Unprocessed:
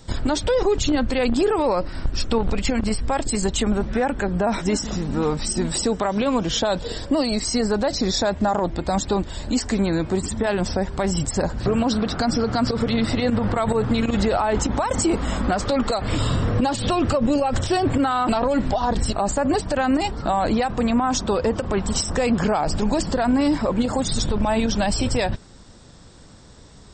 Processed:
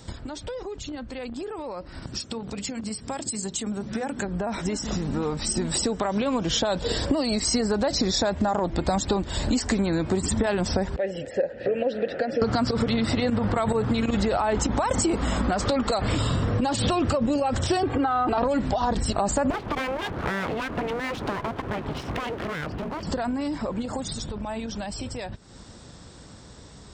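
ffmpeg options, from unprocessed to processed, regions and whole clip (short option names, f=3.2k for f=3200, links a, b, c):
-filter_complex "[0:a]asettb=1/sr,asplit=3[a][b][c];[a]atrim=end=2.024[d];[b]atrim=start=2.02:end=4.25,asetpts=PTS-STARTPTS,afade=t=in:d=0.004:c=qsin,afade=t=out:st=2.226:d=0.004:c=qsin,highpass=160,bass=f=250:g=9,treble=f=4k:g=11,bandreject=f=60:t=h:w=6,bandreject=f=120:t=h:w=6,bandreject=f=180:t=h:w=6,bandreject=f=240:t=h:w=6,bandreject=f=300:t=h:w=6,bandreject=f=360:t=h:w=6,bandreject=f=420:t=h:w=6,bandreject=f=480:t=h:w=6[e];[c]atrim=start=4.246[f];[d][e]acrossfade=d=0.004:c1=hsin:c2=qsin[g];[g][f]acrossfade=d=0.004:c1=qsin:c2=hsin,asettb=1/sr,asplit=3[h][i][j];[h]atrim=end=10.964[k];[i]atrim=start=10.96:end=12.42,asetpts=PTS-STARTPTS,afade=t=in:d=0.004:c=qsin,afade=t=out:st=1.456:d=0.004:c=qsin,asplit=3[l][m][n];[l]bandpass=f=530:t=q:w=8,volume=0dB[o];[m]bandpass=f=1.84k:t=q:w=8,volume=-6dB[p];[n]bandpass=f=2.48k:t=q:w=8,volume=-9dB[q];[o][p][q]amix=inputs=3:normalize=0,highshelf=f=5k:g=-11[r];[j]atrim=start=12.416[s];[k][r]acrossfade=d=0.004:c1=hsin:c2=qsin[t];[t][s]acrossfade=d=0.004:c1=qsin:c2=hsin,asettb=1/sr,asplit=3[u][v][w];[u]atrim=end=17.834[x];[v]atrim=start=17.83:end=18.38,asetpts=PTS-STARTPTS,afade=t=in:d=0.004:c=qsin,afade=t=out:st=0.546:d=0.004:c=qsin,lowpass=4.6k,aecho=1:1:2.5:0.59,atrim=end_sample=24255,acrossover=split=290|1800[y][z][aa];[y]acompressor=threshold=-28dB:ratio=4[ab];[z]acompressor=threshold=-21dB:ratio=4[ac];[aa]acompressor=threshold=-46dB:ratio=4[ad];[ab][ac][ad]amix=inputs=3:normalize=0[ae];[w]atrim=start=18.376[af];[x][ae]acrossfade=d=0.004:c1=hsin:c2=qsin[ag];[ag][af]acrossfade=d=0.004:c1=qsin:c2=hsin,asettb=1/sr,asplit=3[ah][ai][aj];[ah]atrim=end=19.504[ak];[ai]atrim=start=19.5:end=23.03,asetpts=PTS-STARTPTS,afade=t=in:d=0.004:c=qsin,afade=t=out:st=3.526:d=0.004:c=qsin,lowpass=f=3k:w=0.5412,lowpass=f=3k:w=1.3066,aeval=exprs='abs(val(0))':c=same[al];[aj]atrim=start=23.026[am];[ak][al]acrossfade=d=0.004:c1=hsin:c2=qsin[an];[an][am]acrossfade=d=0.004:c1=qsin:c2=hsin,acompressor=threshold=-32dB:ratio=16,highpass=41,dynaudnorm=f=870:g=11:m=11dB,volume=1dB"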